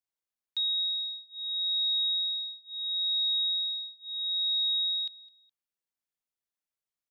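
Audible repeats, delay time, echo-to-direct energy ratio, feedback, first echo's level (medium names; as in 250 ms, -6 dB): 2, 209 ms, -21.0 dB, 33%, -21.5 dB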